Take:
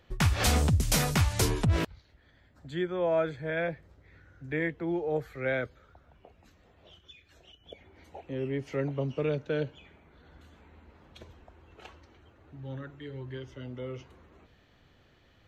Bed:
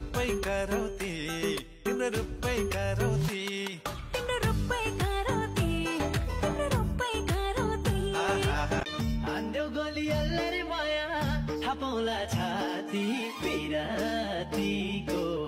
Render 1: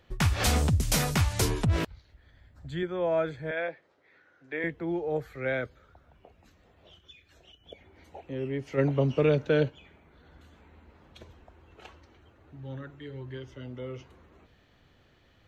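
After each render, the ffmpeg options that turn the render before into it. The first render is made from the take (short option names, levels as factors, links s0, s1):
-filter_complex "[0:a]asettb=1/sr,asplit=3[s0][s1][s2];[s0]atrim=end=1.784[s3];[s1]atrim=start=1.78:end=2.83,asetpts=PTS-STARTPTS,afade=t=in:d=0.004:c=qsin,afade=t=out:st=1.046:d=0.004:c=qsin,asubboost=boost=10:cutoff=130[s4];[s2]atrim=start=2.826[s5];[s3][s4]acrossfade=d=0.004:c1=hsin:c2=qsin[s6];[s6][s5]acrossfade=d=0.004:c1=qsin:c2=hsin,asettb=1/sr,asplit=3[s7][s8][s9];[s7]atrim=end=3.514[s10];[s8]atrim=start=3.51:end=4.64,asetpts=PTS-STARTPTS,afade=t=in:d=0.004:c=qsin,afade=t=out:st=1.126:d=0.004:c=qsin,highpass=400,lowpass=5300[s11];[s9]atrim=start=4.636[s12];[s10][s11]acrossfade=d=0.004:c1=hsin:c2=qsin[s13];[s13][s12]acrossfade=d=0.004:c1=qsin:c2=hsin,asplit=3[s14][s15][s16];[s14]afade=t=out:st=8.77:d=0.02[s17];[s15]acontrast=64,afade=t=in:st=8.77:d=0.02,afade=t=out:st=9.68:d=0.02[s18];[s16]afade=t=in:st=9.68:d=0.02[s19];[s17][s18][s19]amix=inputs=3:normalize=0"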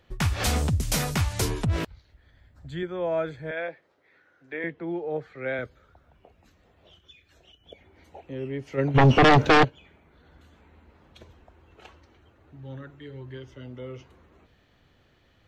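-filter_complex "[0:a]asettb=1/sr,asplit=3[s0][s1][s2];[s0]atrim=end=4.544[s3];[s1]atrim=start=4.54:end=5.59,asetpts=PTS-STARTPTS,afade=t=in:d=0.004:c=qsin,afade=t=out:st=1.046:d=0.004:c=qsin,highpass=140,lowpass=4300[s4];[s2]atrim=start=5.586[s5];[s3][s4]acrossfade=d=0.004:c1=hsin:c2=qsin[s6];[s6][s5]acrossfade=d=0.004:c1=qsin:c2=hsin,asplit=3[s7][s8][s9];[s7]afade=t=out:st=8.94:d=0.02[s10];[s8]aeval=exprs='0.251*sin(PI/2*3.98*val(0)/0.251)':c=same,afade=t=in:st=8.94:d=0.02,afade=t=out:st=9.63:d=0.02[s11];[s9]afade=t=in:st=9.63:d=0.02[s12];[s10][s11][s12]amix=inputs=3:normalize=0"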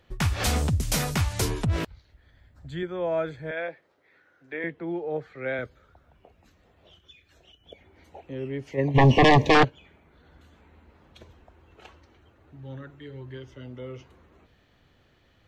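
-filter_complex "[0:a]asettb=1/sr,asplit=3[s0][s1][s2];[s0]atrim=end=8.714[s3];[s1]atrim=start=8.71:end=9.55,asetpts=PTS-STARTPTS,afade=t=in:d=0.004:c=qsin,afade=t=out:st=0.836:d=0.004:c=qsin,asuperstop=centerf=1400:order=20:qfactor=2.8[s4];[s2]atrim=start=9.546[s5];[s3][s4]acrossfade=d=0.004:c1=hsin:c2=qsin[s6];[s6][s5]acrossfade=d=0.004:c1=qsin:c2=hsin"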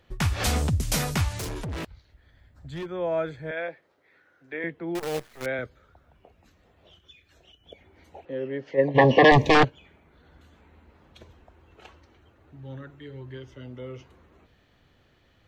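-filter_complex "[0:a]asettb=1/sr,asplit=3[s0][s1][s2];[s0]atrim=end=1.374[s3];[s1]atrim=start=1.37:end=2.9,asetpts=PTS-STARTPTS,afade=t=in:d=0.004:c=qsin,afade=t=out:st=1.526:d=0.004:c=qsin,asoftclip=type=hard:threshold=0.0299[s4];[s2]atrim=start=2.896[s5];[s3][s4]acrossfade=d=0.004:c1=hsin:c2=qsin[s6];[s6][s5]acrossfade=d=0.004:c1=qsin:c2=hsin,asettb=1/sr,asplit=3[s7][s8][s9];[s7]atrim=end=4.954[s10];[s8]atrim=start=4.95:end=5.46,asetpts=PTS-STARTPTS,afade=t=in:d=0.004:c=qsin,afade=t=out:st=0.506:d=0.004:c=qsin,acrusher=bits=6:dc=4:mix=0:aa=0.000001[s11];[s9]atrim=start=5.456[s12];[s10][s11]acrossfade=d=0.004:c1=hsin:c2=qsin[s13];[s13][s12]acrossfade=d=0.004:c1=qsin:c2=hsin,asettb=1/sr,asplit=3[s14][s15][s16];[s14]atrim=end=8.254[s17];[s15]atrim=start=8.25:end=9.32,asetpts=PTS-STARTPTS,afade=t=in:d=0.004:c=qsin,afade=t=out:st=1.066:d=0.004:c=qsin,highpass=180,equalizer=f=530:t=q:w=4:g=9,equalizer=f=1700:t=q:w=4:g=7,equalizer=f=2400:t=q:w=4:g=-5,lowpass=f=5000:w=0.5412,lowpass=f=5000:w=1.3066[s18];[s16]atrim=start=9.316[s19];[s17][s18]acrossfade=d=0.004:c1=hsin:c2=qsin[s20];[s20][s19]acrossfade=d=0.004:c1=qsin:c2=hsin"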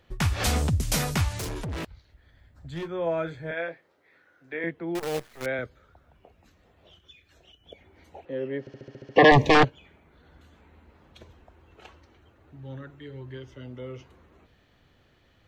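-filter_complex "[0:a]asettb=1/sr,asplit=3[s0][s1][s2];[s0]atrim=end=2.724[s3];[s1]atrim=start=2.72:end=4.71,asetpts=PTS-STARTPTS,afade=t=in:d=0.004:c=qsin,afade=t=out:st=1.986:d=0.004:c=qsin,asplit=2[s4][s5];[s5]adelay=24,volume=0.355[s6];[s4][s6]amix=inputs=2:normalize=0,atrim=end_sample=87759[s7];[s2]atrim=start=4.706[s8];[s3][s7]acrossfade=d=0.004:c1=hsin:c2=qsin[s9];[s9][s8]acrossfade=d=0.004:c1=qsin:c2=hsin,asplit=9[s10][s11][s12][s13][s14][s15][s16][s17][s18];[s10]atrim=end=8.672[s19];[s11]atrim=start=8.598:end=8.672[s20];[s12]atrim=start=8.598:end=8.672[s21];[s13]atrim=start=8.598:end=8.672[s22];[s14]atrim=start=8.598:end=8.672[s23];[s15]atrim=start=8.598:end=8.672[s24];[s16]atrim=start=8.598:end=8.672[s25];[s17]atrim=start=8.598:end=8.672[s26];[s18]atrim=start=9.158[s27];[s19][s20]acrossfade=d=0.004:c1=hsin:c2=hsin[s28];[s28][s21]acrossfade=d=0.004:c1=hsin:c2=hsin[s29];[s29][s22]acrossfade=d=0.004:c1=hsin:c2=hsin[s30];[s30][s23]acrossfade=d=0.004:c1=hsin:c2=hsin[s31];[s31][s24]acrossfade=d=0.004:c1=hsin:c2=hsin[s32];[s32][s25]acrossfade=d=0.004:c1=hsin:c2=hsin[s33];[s33][s26]acrossfade=d=0.004:c1=hsin:c2=hsin[s34];[s34][s27]acrossfade=d=0.004:c1=hsin:c2=hsin"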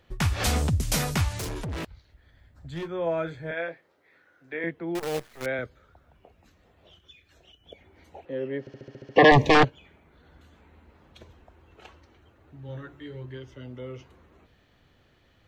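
-filter_complex "[0:a]asettb=1/sr,asplit=3[s0][s1][s2];[s0]atrim=end=12.674[s3];[s1]atrim=start=12.67:end=13.26,asetpts=PTS-STARTPTS,afade=t=in:d=0.004:c=qsin,afade=t=out:st=0.586:d=0.004:c=qsin,asplit=2[s4][s5];[s5]adelay=17,volume=0.708[s6];[s4][s6]amix=inputs=2:normalize=0,atrim=end_sample=26019[s7];[s2]atrim=start=13.256[s8];[s3][s7]acrossfade=d=0.004:c1=hsin:c2=qsin[s9];[s9][s8]acrossfade=d=0.004:c1=qsin:c2=hsin"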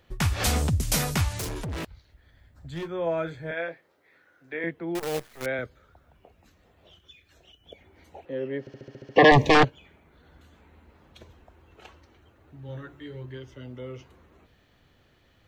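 -af "highshelf=f=8300:g=4.5"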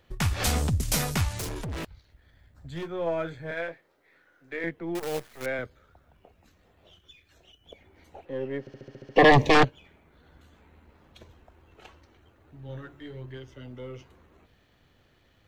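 -af "aeval=exprs='if(lt(val(0),0),0.708*val(0),val(0))':c=same"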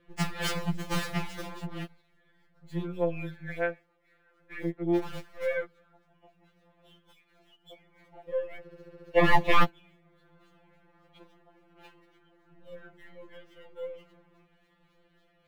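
-filter_complex "[0:a]acrossover=split=3800[s0][s1];[s1]acrusher=samples=16:mix=1:aa=0.000001:lfo=1:lforange=25.6:lforate=3.6[s2];[s0][s2]amix=inputs=2:normalize=0,afftfilt=real='re*2.83*eq(mod(b,8),0)':imag='im*2.83*eq(mod(b,8),0)':win_size=2048:overlap=0.75"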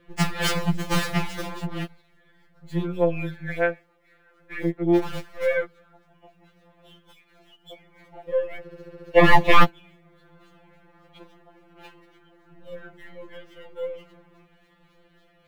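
-af "volume=2.24,alimiter=limit=0.794:level=0:latency=1"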